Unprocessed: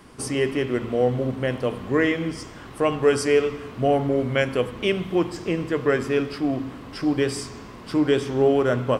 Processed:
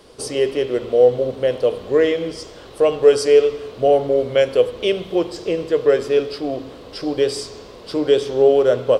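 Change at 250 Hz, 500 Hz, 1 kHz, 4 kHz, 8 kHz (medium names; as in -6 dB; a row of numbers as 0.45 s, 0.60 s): -2.0 dB, +7.5 dB, +1.0 dB, +4.5 dB, +2.0 dB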